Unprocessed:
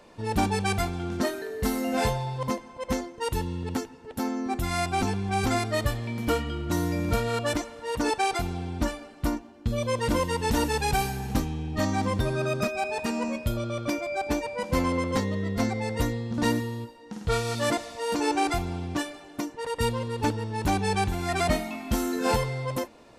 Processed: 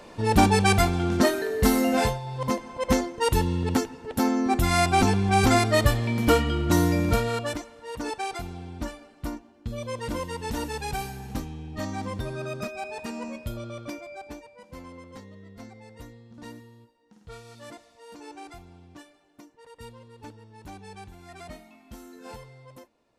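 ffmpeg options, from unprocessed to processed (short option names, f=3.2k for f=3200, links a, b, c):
-af "volume=18dB,afade=t=out:st=1.81:d=0.4:silence=0.251189,afade=t=in:st=2.21:d=0.54:silence=0.266073,afade=t=out:st=6.8:d=0.8:silence=0.251189,afade=t=out:st=13.68:d=0.83:silence=0.251189"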